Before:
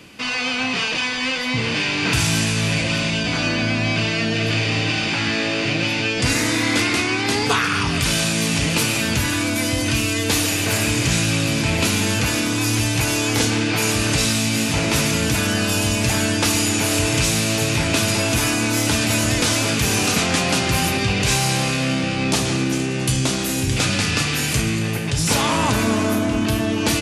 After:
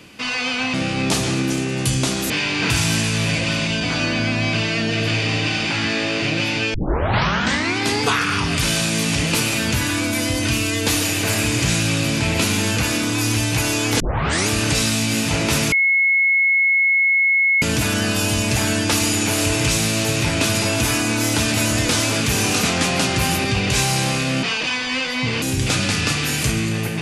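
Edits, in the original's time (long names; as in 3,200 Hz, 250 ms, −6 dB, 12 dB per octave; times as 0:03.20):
0:00.74–0:01.73: swap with 0:21.96–0:23.52
0:06.17: tape start 1.02 s
0:13.43: tape start 0.48 s
0:15.15: insert tone 2,180 Hz −13 dBFS 1.90 s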